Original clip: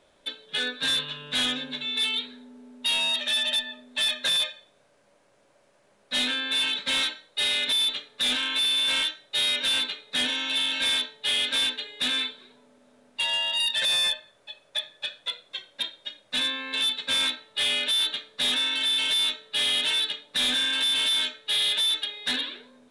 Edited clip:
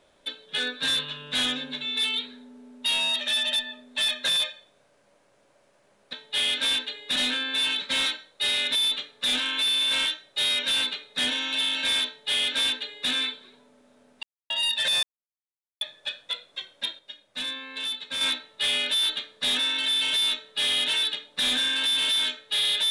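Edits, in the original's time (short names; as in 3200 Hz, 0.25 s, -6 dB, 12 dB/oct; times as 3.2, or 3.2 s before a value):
11.04–12.07 copy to 6.13
13.2–13.47 mute
14–14.78 mute
15.96–17.18 gain -5.5 dB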